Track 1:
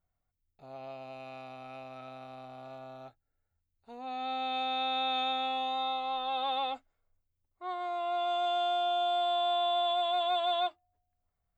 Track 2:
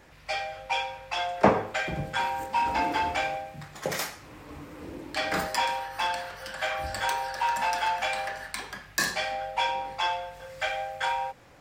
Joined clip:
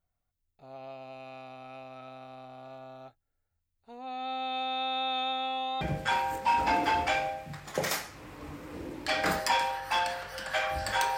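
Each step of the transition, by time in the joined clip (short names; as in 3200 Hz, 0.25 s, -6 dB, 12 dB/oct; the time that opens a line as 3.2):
track 1
5.81 switch to track 2 from 1.89 s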